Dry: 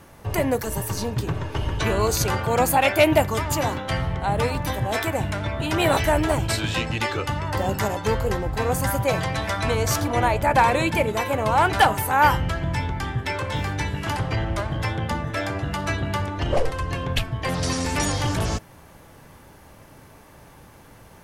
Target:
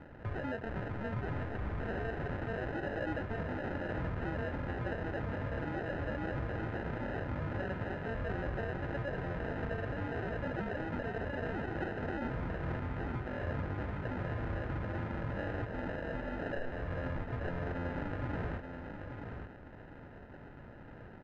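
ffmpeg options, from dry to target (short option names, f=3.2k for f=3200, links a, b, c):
-filter_complex "[0:a]asettb=1/sr,asplit=3[a][b][c];[a]atrim=end=15.654[d];[b]atrim=start=15.65:end=16.54,asetpts=PTS-STARTPTS,afade=t=in:d=0.004:c=qsin,afade=t=out:st=0.886:d=0.004:c=qsin,highpass=650[e];[c]atrim=start=16.536[f];[d][e]acrossfade=d=0.004:c1=hsin:c2=qsin[g];[g][f]acrossfade=d=0.004:c1=qsin:c2=hsin,acompressor=threshold=-29dB:ratio=3,alimiter=level_in=2dB:limit=-24dB:level=0:latency=1:release=29,volume=-2dB,acrusher=samples=39:mix=1:aa=0.000001,lowpass=f=1.7k:t=q:w=1.6,aecho=1:1:881:0.447,volume=-4dB"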